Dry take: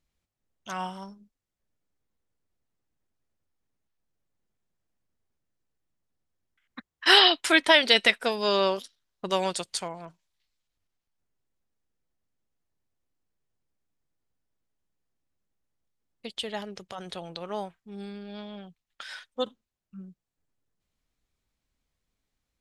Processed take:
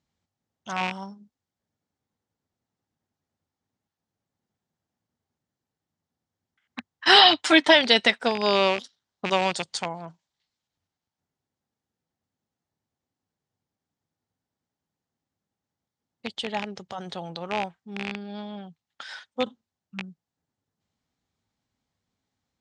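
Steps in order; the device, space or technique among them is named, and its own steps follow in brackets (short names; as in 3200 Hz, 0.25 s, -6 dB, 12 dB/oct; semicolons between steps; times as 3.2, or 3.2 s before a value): 7.15–7.74 comb 6.6 ms, depth 73%; car door speaker with a rattle (rattling part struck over -41 dBFS, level -17 dBFS; speaker cabinet 91–7500 Hz, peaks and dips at 97 Hz +7 dB, 160 Hz +4 dB, 240 Hz +5 dB, 820 Hz +6 dB, 2500 Hz -4 dB); gain +1.5 dB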